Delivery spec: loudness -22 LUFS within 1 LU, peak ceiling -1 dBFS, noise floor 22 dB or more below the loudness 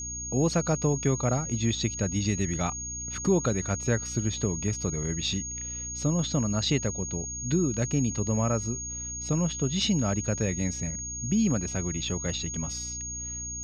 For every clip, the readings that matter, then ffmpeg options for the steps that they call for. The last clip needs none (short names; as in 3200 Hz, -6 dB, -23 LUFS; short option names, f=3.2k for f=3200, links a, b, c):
hum 60 Hz; harmonics up to 300 Hz; hum level -40 dBFS; steady tone 6600 Hz; tone level -34 dBFS; loudness -28.0 LUFS; peak -12.5 dBFS; loudness target -22.0 LUFS
-> -af "bandreject=f=60:t=h:w=6,bandreject=f=120:t=h:w=6,bandreject=f=180:t=h:w=6,bandreject=f=240:t=h:w=6,bandreject=f=300:t=h:w=6"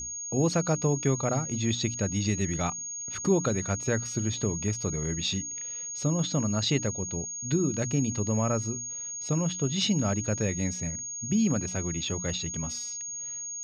hum none; steady tone 6600 Hz; tone level -34 dBFS
-> -af "bandreject=f=6.6k:w=30"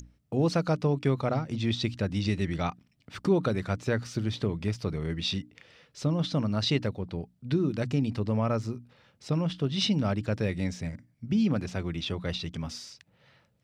steady tone none; loudness -29.5 LUFS; peak -13.5 dBFS; loudness target -22.0 LUFS
-> -af "volume=7.5dB"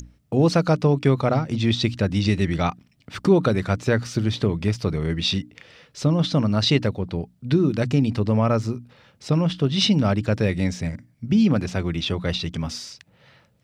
loudness -22.0 LUFS; peak -6.0 dBFS; noise floor -61 dBFS